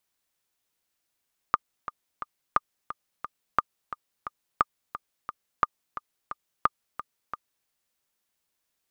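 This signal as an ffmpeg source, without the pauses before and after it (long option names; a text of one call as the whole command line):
ffmpeg -f lavfi -i "aevalsrc='pow(10,(-6.5-13.5*gte(mod(t,3*60/176),60/176))/20)*sin(2*PI*1210*mod(t,60/176))*exp(-6.91*mod(t,60/176)/0.03)':duration=6.13:sample_rate=44100" out.wav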